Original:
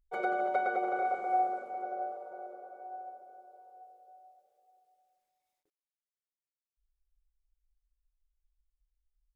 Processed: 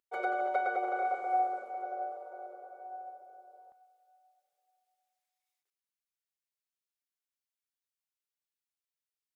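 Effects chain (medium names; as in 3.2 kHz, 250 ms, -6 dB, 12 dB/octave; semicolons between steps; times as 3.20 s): high-pass 410 Hz 12 dB/octave, from 3.72 s 1.3 kHz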